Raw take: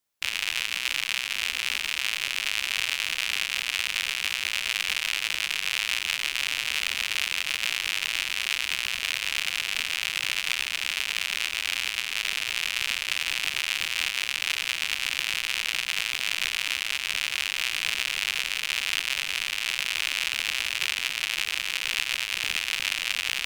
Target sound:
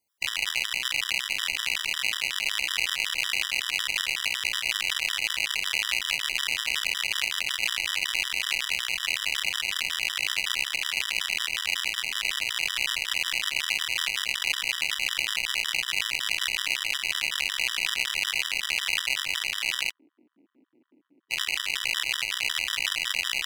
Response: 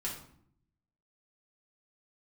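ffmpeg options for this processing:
-filter_complex "[0:a]asplit=3[link_01][link_02][link_03];[link_01]afade=type=out:start_time=19.89:duration=0.02[link_04];[link_02]asuperpass=centerf=290:order=4:qfactor=3,afade=type=in:start_time=19.89:duration=0.02,afade=type=out:start_time=21.3:duration=0.02[link_05];[link_03]afade=type=in:start_time=21.3:duration=0.02[link_06];[link_04][link_05][link_06]amix=inputs=3:normalize=0,afftfilt=real='re*gt(sin(2*PI*5.4*pts/sr)*(1-2*mod(floor(b*sr/1024/980),2)),0)':imag='im*gt(sin(2*PI*5.4*pts/sr)*(1-2*mod(floor(b*sr/1024/980),2)),0)':win_size=1024:overlap=0.75,volume=3.5dB"

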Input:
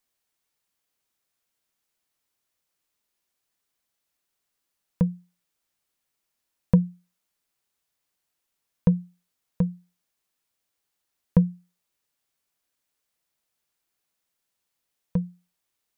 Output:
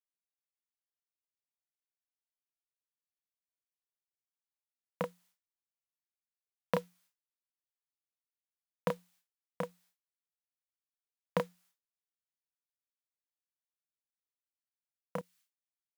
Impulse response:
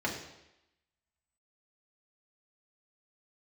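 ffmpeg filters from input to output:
-filter_complex "[0:a]agate=range=-33dB:threshold=-45dB:ratio=3:detection=peak,asetnsamples=nb_out_samples=441:pad=0,asendcmd='15.18 highpass f 1500',highpass=690,acrusher=bits=5:mode=log:mix=0:aa=0.000001,asplit=2[link_01][link_02];[link_02]adelay=31,volume=-3.5dB[link_03];[link_01][link_03]amix=inputs=2:normalize=0,volume=4.5dB"

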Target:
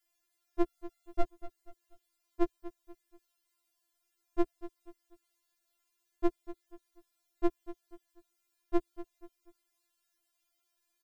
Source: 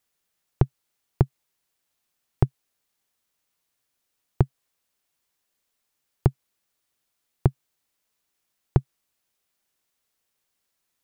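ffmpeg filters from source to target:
ffmpeg -i in.wav -filter_complex "[0:a]asplit=3[link_01][link_02][link_03];[link_01]afade=type=out:start_time=0.63:duration=0.02[link_04];[link_02]aecho=1:1:7.3:0.77,afade=type=in:start_time=0.63:duration=0.02,afade=type=out:start_time=1.23:duration=0.02[link_05];[link_03]afade=type=in:start_time=1.23:duration=0.02[link_06];[link_04][link_05][link_06]amix=inputs=3:normalize=0,asplit=2[link_07][link_08];[link_08]aecho=0:1:242|484|726:0.168|0.0621|0.023[link_09];[link_07][link_09]amix=inputs=2:normalize=0,afftfilt=real='re*4*eq(mod(b,16),0)':imag='im*4*eq(mod(b,16),0)':win_size=2048:overlap=0.75" out.wav

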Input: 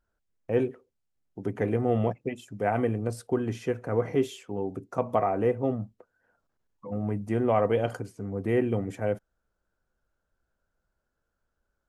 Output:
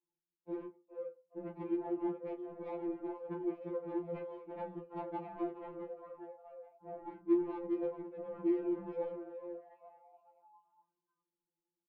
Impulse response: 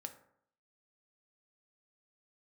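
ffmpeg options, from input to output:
-filter_complex "[0:a]acrossover=split=300[link_01][link_02];[link_02]acompressor=threshold=-31dB:ratio=6[link_03];[link_01][link_03]amix=inputs=2:normalize=0,asplit=3[link_04][link_05][link_06];[link_04]bandpass=frequency=300:width_type=q:width=8,volume=0dB[link_07];[link_05]bandpass=frequency=870:width_type=q:width=8,volume=-6dB[link_08];[link_06]bandpass=frequency=2240:width_type=q:width=8,volume=-9dB[link_09];[link_07][link_08][link_09]amix=inputs=3:normalize=0,asplit=6[link_10][link_11][link_12][link_13][link_14][link_15];[link_11]adelay=417,afreqshift=140,volume=-9.5dB[link_16];[link_12]adelay=834,afreqshift=280,volume=-15.9dB[link_17];[link_13]adelay=1251,afreqshift=420,volume=-22.3dB[link_18];[link_14]adelay=1668,afreqshift=560,volume=-28.6dB[link_19];[link_15]adelay=2085,afreqshift=700,volume=-35dB[link_20];[link_10][link_16][link_17][link_18][link_19][link_20]amix=inputs=6:normalize=0,adynamicsmooth=sensitivity=6:basefreq=670,asplit=2[link_21][link_22];[link_22]adelay=31,volume=-12.5dB[link_23];[link_21][link_23]amix=inputs=2:normalize=0,asplit=2[link_24][link_25];[1:a]atrim=start_sample=2205,afade=type=out:start_time=0.16:duration=0.01,atrim=end_sample=7497[link_26];[link_25][link_26]afir=irnorm=-1:irlink=0,volume=-3.5dB[link_27];[link_24][link_27]amix=inputs=2:normalize=0,afftfilt=real='re*2.83*eq(mod(b,8),0)':imag='im*2.83*eq(mod(b,8),0)':win_size=2048:overlap=0.75,volume=7dB"

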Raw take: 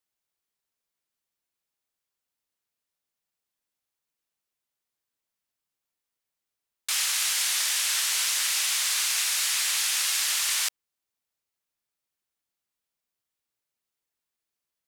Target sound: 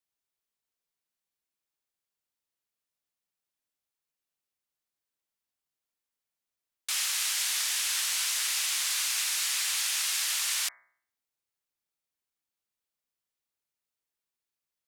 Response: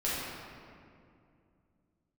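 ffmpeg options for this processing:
-filter_complex "[0:a]bandreject=frequency=61.44:width_type=h:width=4,bandreject=frequency=122.88:width_type=h:width=4,bandreject=frequency=184.32:width_type=h:width=4,bandreject=frequency=245.76:width_type=h:width=4,bandreject=frequency=307.2:width_type=h:width=4,bandreject=frequency=368.64:width_type=h:width=4,bandreject=frequency=430.08:width_type=h:width=4,bandreject=frequency=491.52:width_type=h:width=4,bandreject=frequency=552.96:width_type=h:width=4,bandreject=frequency=614.4:width_type=h:width=4,bandreject=frequency=675.84:width_type=h:width=4,bandreject=frequency=737.28:width_type=h:width=4,bandreject=frequency=798.72:width_type=h:width=4,bandreject=frequency=860.16:width_type=h:width=4,bandreject=frequency=921.6:width_type=h:width=4,bandreject=frequency=983.04:width_type=h:width=4,bandreject=frequency=1044.48:width_type=h:width=4,bandreject=frequency=1105.92:width_type=h:width=4,bandreject=frequency=1167.36:width_type=h:width=4,bandreject=frequency=1228.8:width_type=h:width=4,bandreject=frequency=1290.24:width_type=h:width=4,bandreject=frequency=1351.68:width_type=h:width=4,bandreject=frequency=1413.12:width_type=h:width=4,bandreject=frequency=1474.56:width_type=h:width=4,bandreject=frequency=1536:width_type=h:width=4,bandreject=frequency=1597.44:width_type=h:width=4,bandreject=frequency=1658.88:width_type=h:width=4,bandreject=frequency=1720.32:width_type=h:width=4,bandreject=frequency=1781.76:width_type=h:width=4,bandreject=frequency=1843.2:width_type=h:width=4,bandreject=frequency=1904.64:width_type=h:width=4,bandreject=frequency=1966.08:width_type=h:width=4,bandreject=frequency=2027.52:width_type=h:width=4,bandreject=frequency=2088.96:width_type=h:width=4,bandreject=frequency=2150.4:width_type=h:width=4,bandreject=frequency=2211.84:width_type=h:width=4,acrossover=split=530|3800[link_01][link_02][link_03];[link_01]alimiter=level_in=36dB:limit=-24dB:level=0:latency=1:release=195,volume=-36dB[link_04];[link_04][link_02][link_03]amix=inputs=3:normalize=0,volume=-3.5dB"

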